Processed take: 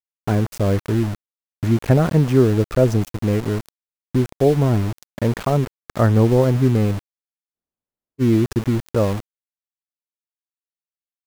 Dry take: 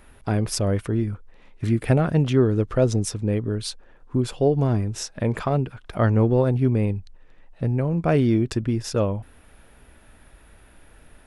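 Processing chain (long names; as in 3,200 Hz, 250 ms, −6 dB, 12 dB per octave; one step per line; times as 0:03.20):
Bessel low-pass filter 5,000 Hz, order 2
parametric band 3,600 Hz −14.5 dB 0.88 octaves
centre clipping without the shift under −29.5 dBFS
frozen spectrum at 0:07.56, 0.64 s
level +4 dB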